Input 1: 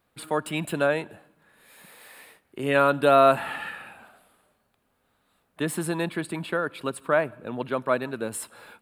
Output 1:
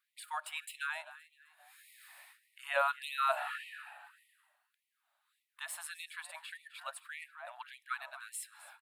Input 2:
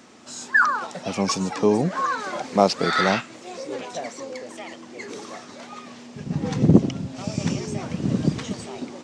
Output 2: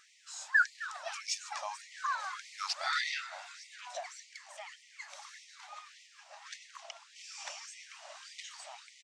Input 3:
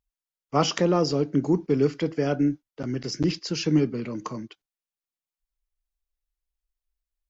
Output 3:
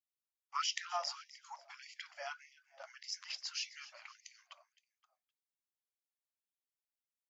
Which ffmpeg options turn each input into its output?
-filter_complex "[0:a]asplit=4[a][b][c][d];[b]adelay=260,afreqshift=57,volume=-17dB[e];[c]adelay=520,afreqshift=114,volume=-25.4dB[f];[d]adelay=780,afreqshift=171,volume=-33.8dB[g];[a][e][f][g]amix=inputs=4:normalize=0,asubboost=boost=5.5:cutoff=73,afftfilt=real='re*gte(b*sr/1024,550*pow(1900/550,0.5+0.5*sin(2*PI*1.7*pts/sr)))':imag='im*gte(b*sr/1024,550*pow(1900/550,0.5+0.5*sin(2*PI*1.7*pts/sr)))':win_size=1024:overlap=0.75,volume=-8dB"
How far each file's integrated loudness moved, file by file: -13.5, -13.5, -16.5 LU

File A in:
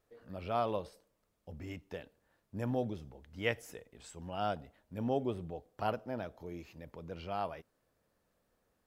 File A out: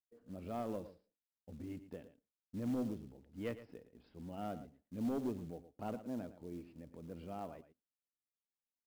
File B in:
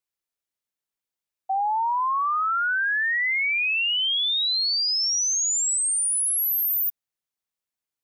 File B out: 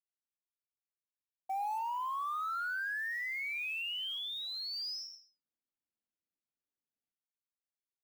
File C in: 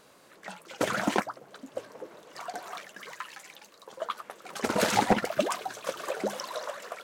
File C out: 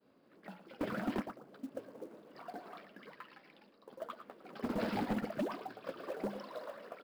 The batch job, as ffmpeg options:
-af "agate=range=-33dB:threshold=-53dB:ratio=3:detection=peak,equalizer=f=250:t=o:w=1:g=10,equalizer=f=1k:t=o:w=1:g=-4,equalizer=f=2k:t=o:w=1:g=-4,equalizer=f=4k:t=o:w=1:g=-9,aresample=11025,asoftclip=type=tanh:threshold=-23dB,aresample=44100,acrusher=bits=6:mode=log:mix=0:aa=0.000001,aecho=1:1:113:0.211,volume=-7dB"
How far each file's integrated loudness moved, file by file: -5.0, -14.5, -10.0 LU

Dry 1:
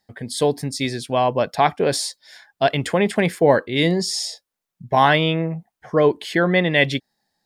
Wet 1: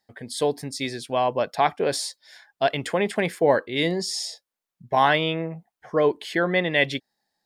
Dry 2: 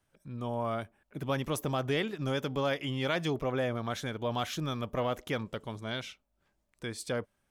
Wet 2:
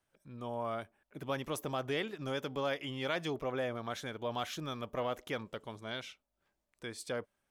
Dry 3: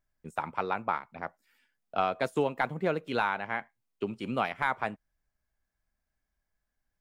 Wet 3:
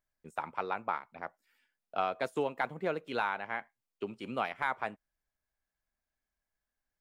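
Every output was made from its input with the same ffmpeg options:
-af "bass=f=250:g=-6,treble=f=4k:g=-1,volume=-3.5dB"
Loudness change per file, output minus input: -4.0, -4.5, -4.0 LU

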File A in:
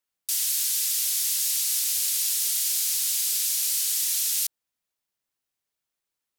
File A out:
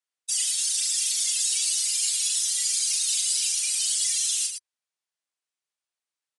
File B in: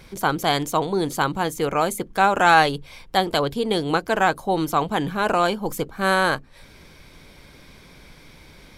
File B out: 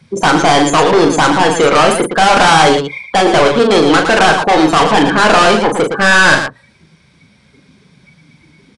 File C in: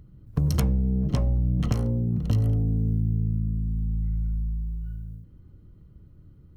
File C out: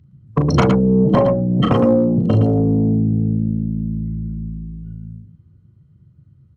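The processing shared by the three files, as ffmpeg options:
-filter_complex "[0:a]acrossover=split=2600[a][b];[b]acompressor=threshold=-35dB:ratio=4:attack=1:release=60[c];[a][c]amix=inputs=2:normalize=0,afftdn=nr=29:nf=-36,highpass=110,asplit=2[d][e];[e]highpass=f=720:p=1,volume=28dB,asoftclip=type=tanh:threshold=-3.5dB[f];[d][f]amix=inputs=2:normalize=0,lowpass=f=3.1k:p=1,volume=-6dB,crystalizer=i=1.5:c=0,bandreject=f=60:t=h:w=6,bandreject=f=120:t=h:w=6,bandreject=f=180:t=h:w=6,asoftclip=type=hard:threshold=-11dB,aecho=1:1:37.9|113.7:0.501|0.447,aresample=22050,aresample=44100,volume=3dB"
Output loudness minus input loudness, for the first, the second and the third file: 0.0, +11.5, +9.5 LU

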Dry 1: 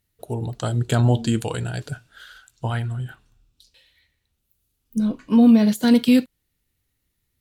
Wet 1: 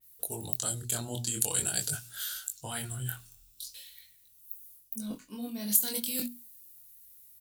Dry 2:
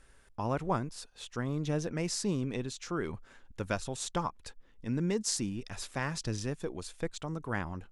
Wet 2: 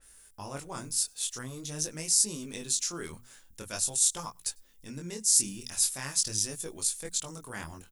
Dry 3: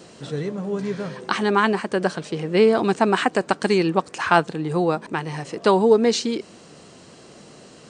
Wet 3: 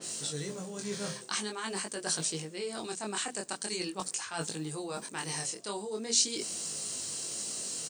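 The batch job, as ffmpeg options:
-filter_complex "[0:a]aemphasis=mode=production:type=50kf,bandreject=f=60:t=h:w=6,bandreject=f=120:t=h:w=6,bandreject=f=180:t=h:w=6,bandreject=f=240:t=h:w=6,areverse,acompressor=threshold=-30dB:ratio=12,areverse,crystalizer=i=3:c=0,flanger=delay=18.5:depth=6.4:speed=0.45,asplit=2[a][b];[b]adelay=99.13,volume=-30dB,highshelf=f=4k:g=-2.23[c];[a][c]amix=inputs=2:normalize=0,adynamicequalizer=threshold=0.00447:dfrequency=3700:dqfactor=0.7:tfrequency=3700:tqfactor=0.7:attack=5:release=100:ratio=0.375:range=2.5:mode=boostabove:tftype=highshelf,volume=-2dB"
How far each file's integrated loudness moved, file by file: -11.5, +7.0, -12.5 LU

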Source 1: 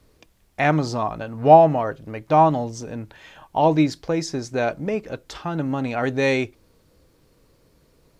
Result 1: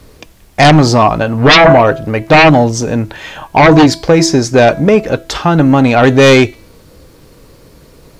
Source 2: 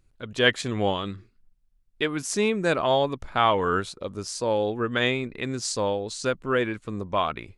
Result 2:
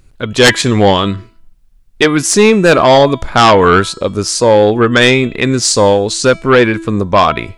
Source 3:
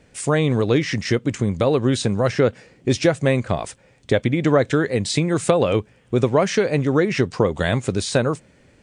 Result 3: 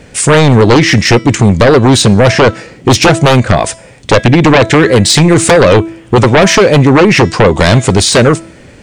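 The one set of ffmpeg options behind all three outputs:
-af "bandreject=f=329.3:t=h:w=4,bandreject=f=658.6:t=h:w=4,bandreject=f=987.9:t=h:w=4,bandreject=f=1.3172k:t=h:w=4,bandreject=f=1.6465k:t=h:w=4,bandreject=f=1.9758k:t=h:w=4,bandreject=f=2.3051k:t=h:w=4,bandreject=f=2.6344k:t=h:w=4,bandreject=f=2.9637k:t=h:w=4,bandreject=f=3.293k:t=h:w=4,bandreject=f=3.6223k:t=h:w=4,bandreject=f=3.9516k:t=h:w=4,bandreject=f=4.2809k:t=h:w=4,bandreject=f=4.6102k:t=h:w=4,bandreject=f=4.9395k:t=h:w=4,bandreject=f=5.2688k:t=h:w=4,bandreject=f=5.5981k:t=h:w=4,bandreject=f=5.9274k:t=h:w=4,bandreject=f=6.2567k:t=h:w=4,bandreject=f=6.586k:t=h:w=4,bandreject=f=6.9153k:t=h:w=4,bandreject=f=7.2446k:t=h:w=4,bandreject=f=7.5739k:t=h:w=4,bandreject=f=7.9032k:t=h:w=4,bandreject=f=8.2325k:t=h:w=4,bandreject=f=8.5618k:t=h:w=4,bandreject=f=8.8911k:t=h:w=4,bandreject=f=9.2204k:t=h:w=4,aeval=exprs='0.891*sin(PI/2*5.01*val(0)/0.891)':c=same"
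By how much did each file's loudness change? +12.0, +15.5, +13.0 LU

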